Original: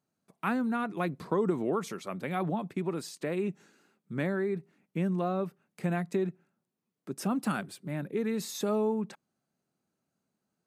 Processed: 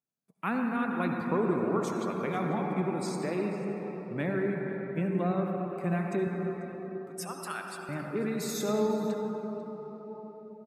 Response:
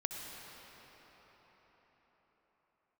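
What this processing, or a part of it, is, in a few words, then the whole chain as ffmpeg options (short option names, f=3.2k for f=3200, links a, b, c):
cathedral: -filter_complex "[0:a]asettb=1/sr,asplit=3[a][b][c];[a]atrim=end=6.274[d];[b]atrim=start=6.27:end=7.89,asetpts=PTS-STARTPTS,afade=t=in:d=0.004:c=qsin,afade=t=out:st=1.616:d=0.004:c=qsin,highpass=960[e];[c]atrim=start=7.886[f];[d][e]acrossfade=d=0.004:c1=hsin:c2=qsin[g];[g][f]acrossfade=d=0.004:c1=qsin:c2=hsin[h];[1:a]atrim=start_sample=2205[i];[h][i]afir=irnorm=-1:irlink=0,afftdn=nr=13:nf=-51,highshelf=f=7.5k:g=7.5,aecho=1:1:492:0.1"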